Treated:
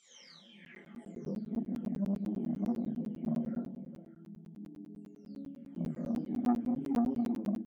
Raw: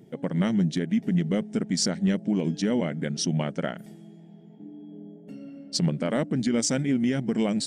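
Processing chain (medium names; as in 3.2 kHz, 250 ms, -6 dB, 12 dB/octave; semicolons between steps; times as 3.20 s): delay that grows with frequency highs early, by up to 788 ms; dynamic bell 160 Hz, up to -6 dB, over -38 dBFS, Q 2.7; harmonic-percussive split percussive -10 dB; peak limiter -25 dBFS, peak gain reduction 6.5 dB; chorus voices 2, 0.77 Hz, delay 28 ms, depth 2.2 ms; doubling 25 ms -4 dB; repeats whose band climbs or falls 199 ms, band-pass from 250 Hz, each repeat 1.4 oct, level -6.5 dB; band-pass sweep 5.3 kHz -> 260 Hz, 0.42–1.37 s; crackling interface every 0.10 s, samples 512, zero; transformer saturation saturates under 430 Hz; trim +4.5 dB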